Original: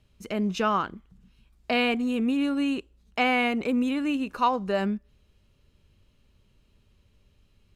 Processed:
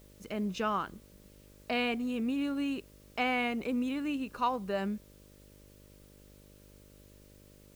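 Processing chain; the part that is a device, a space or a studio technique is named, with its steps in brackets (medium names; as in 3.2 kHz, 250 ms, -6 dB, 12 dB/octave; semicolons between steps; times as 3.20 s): video cassette with head-switching buzz (mains buzz 50 Hz, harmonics 12, -51 dBFS -3 dB/octave; white noise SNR 29 dB); trim -7 dB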